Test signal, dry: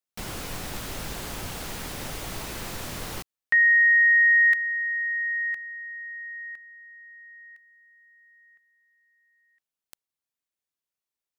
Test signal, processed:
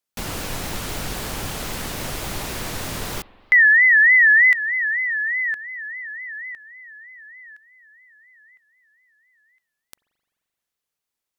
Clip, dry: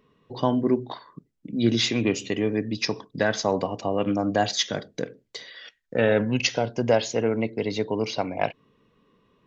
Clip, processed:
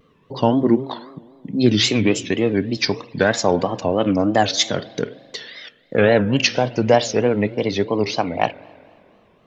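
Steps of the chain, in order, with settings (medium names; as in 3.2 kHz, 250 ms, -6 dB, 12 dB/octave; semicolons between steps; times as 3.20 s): spring tank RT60 2.3 s, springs 43 ms, chirp 30 ms, DRR 19 dB; wow and flutter 3.3 Hz 150 cents; trim +6 dB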